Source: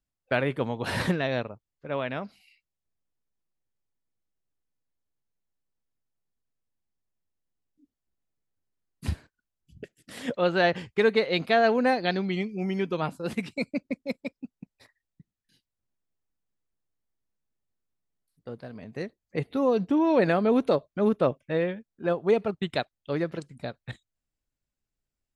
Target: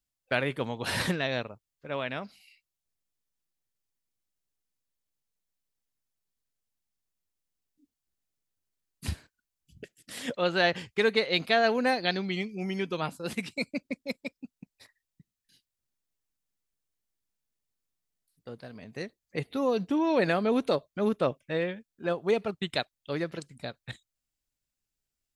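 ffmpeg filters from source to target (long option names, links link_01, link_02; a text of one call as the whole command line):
ffmpeg -i in.wav -af "highshelf=frequency=2200:gain=9.5,volume=-4dB" out.wav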